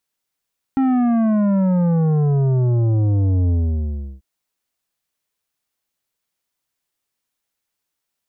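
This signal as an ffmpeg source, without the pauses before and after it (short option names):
-f lavfi -i "aevalsrc='0.178*clip((3.44-t)/0.71,0,1)*tanh(3.16*sin(2*PI*270*3.44/log(65/270)*(exp(log(65/270)*t/3.44)-1)))/tanh(3.16)':d=3.44:s=44100"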